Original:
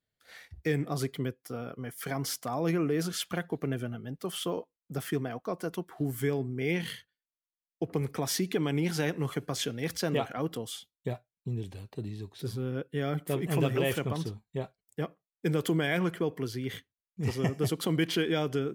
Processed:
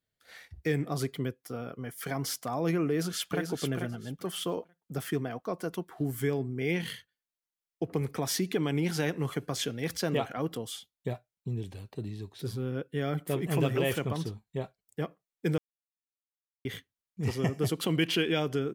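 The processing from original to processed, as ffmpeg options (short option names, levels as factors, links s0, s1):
-filter_complex "[0:a]asplit=2[s0][s1];[s1]afade=t=in:st=2.88:d=0.01,afade=t=out:st=3.51:d=0.01,aecho=0:1:440|880|1320:0.530884|0.106177|0.0212354[s2];[s0][s2]amix=inputs=2:normalize=0,asettb=1/sr,asplit=3[s3][s4][s5];[s3]atrim=end=17.804[s6];[s4]atrim=start=17.8:end=18.4,asetpts=PTS-STARTPTS,afade=t=in:d=0.004:c=qsin,afade=t=out:st=0.596:d=0.004:c=qsin,equalizer=f=2700:t=o:w=0.28:g=10.5[s7];[s5]atrim=start=18.396[s8];[s6][s7]acrossfade=d=0.004:c1=hsin:c2=qsin[s9];[s9][s8]acrossfade=d=0.004:c1=qsin:c2=hsin,asplit=3[s10][s11][s12];[s10]atrim=end=15.58,asetpts=PTS-STARTPTS,afade=t=out:st=15.576:d=0.004:c=hsin[s13];[s11]atrim=start=15.58:end=16.65,asetpts=PTS-STARTPTS,volume=0[s14];[s12]atrim=start=16.65,asetpts=PTS-STARTPTS,afade=t=in:d=0.004:c=hsin[s15];[s13][s14][s15]concat=n=3:v=0:a=1"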